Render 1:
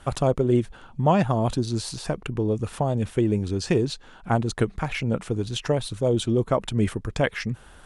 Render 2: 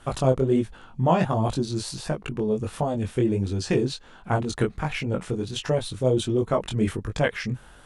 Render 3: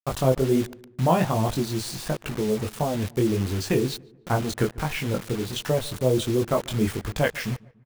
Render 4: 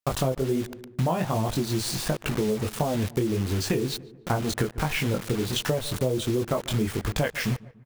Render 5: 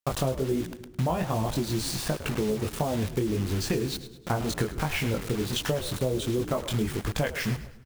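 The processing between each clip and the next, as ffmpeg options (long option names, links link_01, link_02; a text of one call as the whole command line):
ffmpeg -i in.wav -af "flanger=delay=19:depth=4.5:speed=1.4,volume=2.5dB" out.wav
ffmpeg -i in.wav -filter_complex "[0:a]acrusher=bits=5:mix=0:aa=0.000001,asplit=2[link_01][link_02];[link_02]adelay=145,lowpass=frequency=1600:poles=1,volume=-22dB,asplit=2[link_03][link_04];[link_04]adelay=145,lowpass=frequency=1600:poles=1,volume=0.47,asplit=2[link_05][link_06];[link_06]adelay=145,lowpass=frequency=1600:poles=1,volume=0.47[link_07];[link_01][link_03][link_05][link_07]amix=inputs=4:normalize=0" out.wav
ffmpeg -i in.wav -af "acompressor=threshold=-26dB:ratio=10,volume=4.5dB" out.wav
ffmpeg -i in.wav -filter_complex "[0:a]asplit=5[link_01][link_02][link_03][link_04][link_05];[link_02]adelay=105,afreqshift=-69,volume=-13dB[link_06];[link_03]adelay=210,afreqshift=-138,volume=-21.2dB[link_07];[link_04]adelay=315,afreqshift=-207,volume=-29.4dB[link_08];[link_05]adelay=420,afreqshift=-276,volume=-37.5dB[link_09];[link_01][link_06][link_07][link_08][link_09]amix=inputs=5:normalize=0,volume=-2dB" out.wav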